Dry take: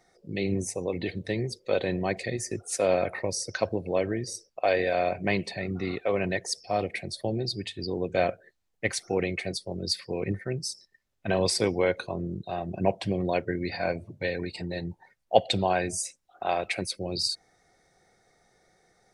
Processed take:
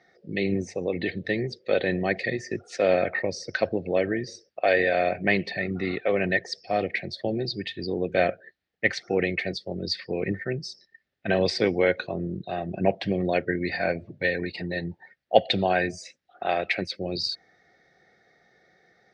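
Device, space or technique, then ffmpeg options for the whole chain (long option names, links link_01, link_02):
guitar cabinet: -af "highpass=88,equalizer=frequency=110:width_type=q:width=4:gain=-6,equalizer=frequency=1000:width_type=q:width=4:gain=-10,equalizer=frequency=1800:width_type=q:width=4:gain=7,lowpass=frequency=4600:width=0.5412,lowpass=frequency=4600:width=1.3066,volume=3dB"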